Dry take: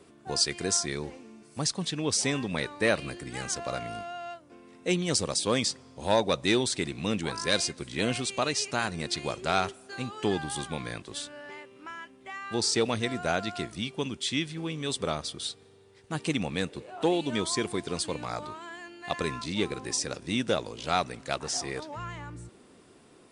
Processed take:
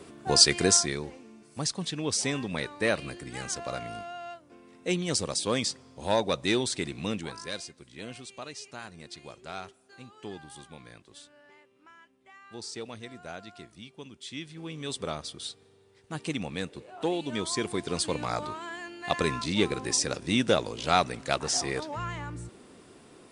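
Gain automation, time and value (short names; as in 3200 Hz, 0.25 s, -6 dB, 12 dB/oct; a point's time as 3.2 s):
0.64 s +7.5 dB
1.05 s -1.5 dB
7.05 s -1.5 dB
7.67 s -13 dB
14.13 s -13 dB
14.81 s -3.5 dB
17.23 s -3.5 dB
18.21 s +3.5 dB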